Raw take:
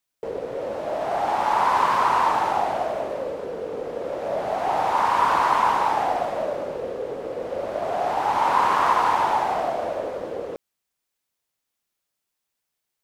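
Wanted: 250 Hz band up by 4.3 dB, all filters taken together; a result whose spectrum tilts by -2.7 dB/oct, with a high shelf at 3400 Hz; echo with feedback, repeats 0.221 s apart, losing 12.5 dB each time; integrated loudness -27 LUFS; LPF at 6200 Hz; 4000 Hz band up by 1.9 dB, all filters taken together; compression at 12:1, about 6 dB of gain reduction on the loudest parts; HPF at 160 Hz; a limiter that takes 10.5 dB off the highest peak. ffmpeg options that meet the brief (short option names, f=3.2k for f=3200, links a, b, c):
-af "highpass=160,lowpass=6.2k,equalizer=f=250:t=o:g=6.5,highshelf=f=3.4k:g=-3.5,equalizer=f=4k:t=o:g=5.5,acompressor=threshold=-21dB:ratio=12,alimiter=level_in=0.5dB:limit=-24dB:level=0:latency=1,volume=-0.5dB,aecho=1:1:221|442|663:0.237|0.0569|0.0137,volume=5.5dB"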